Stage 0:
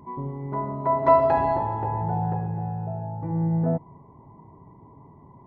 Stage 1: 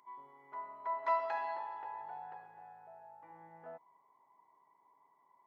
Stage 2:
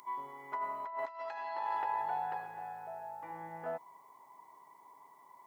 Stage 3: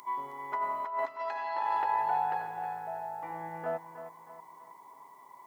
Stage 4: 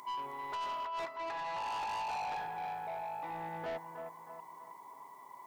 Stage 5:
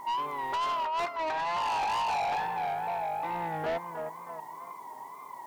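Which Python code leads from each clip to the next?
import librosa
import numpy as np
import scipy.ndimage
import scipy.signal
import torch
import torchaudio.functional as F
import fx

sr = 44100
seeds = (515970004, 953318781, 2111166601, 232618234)

y1 = scipy.signal.sosfilt(scipy.signal.butter(2, 1500.0, 'highpass', fs=sr, output='sos'), x)
y1 = y1 * 10.0 ** (-5.0 / 20.0)
y2 = fx.high_shelf(y1, sr, hz=4000.0, db=10.0)
y2 = fx.over_compress(y2, sr, threshold_db=-44.0, ratio=-1.0)
y2 = y2 * 10.0 ** (6.0 / 20.0)
y3 = fx.echo_feedback(y2, sr, ms=316, feedback_pct=38, wet_db=-11.5)
y3 = y3 * 10.0 ** (5.0 / 20.0)
y4 = 10.0 ** (-36.5 / 20.0) * np.tanh(y3 / 10.0 ** (-36.5 / 20.0))
y4 = y4 * 10.0 ** (1.0 / 20.0)
y5 = fx.wow_flutter(y4, sr, seeds[0], rate_hz=2.1, depth_cents=91.0)
y5 = y5 * 10.0 ** (8.0 / 20.0)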